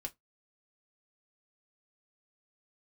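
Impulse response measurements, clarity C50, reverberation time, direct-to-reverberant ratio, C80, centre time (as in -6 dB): 26.5 dB, 0.15 s, 1.5 dB, 38.5 dB, 5 ms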